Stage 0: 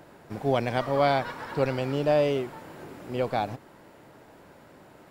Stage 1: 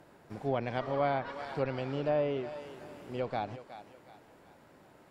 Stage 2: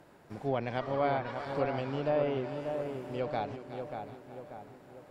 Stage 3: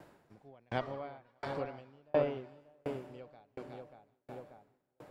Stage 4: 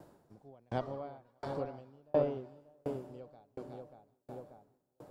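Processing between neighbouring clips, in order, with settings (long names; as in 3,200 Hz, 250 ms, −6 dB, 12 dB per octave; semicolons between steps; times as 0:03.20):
feedback echo with a high-pass in the loop 367 ms, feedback 41%, high-pass 420 Hz, level −12 dB; treble cut that deepens with the level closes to 2,400 Hz, closed at −19 dBFS; level −7 dB
feedback echo with a low-pass in the loop 587 ms, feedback 51%, low-pass 2,000 Hz, level −6 dB
tremolo with a ramp in dB decaying 1.4 Hz, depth 39 dB; level +3 dB
parametric band 2,200 Hz −12 dB 1.5 octaves; level +1.5 dB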